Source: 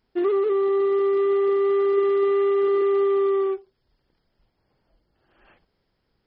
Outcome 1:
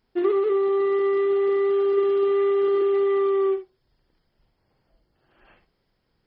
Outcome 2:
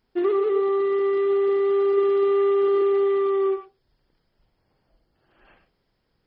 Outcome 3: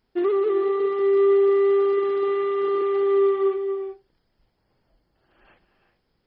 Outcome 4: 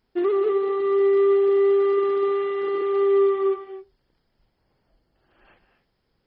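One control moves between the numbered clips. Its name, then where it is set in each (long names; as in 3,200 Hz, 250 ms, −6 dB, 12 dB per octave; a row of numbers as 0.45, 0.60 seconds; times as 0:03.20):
reverb whose tail is shaped and stops, gate: 90, 130, 420, 280 milliseconds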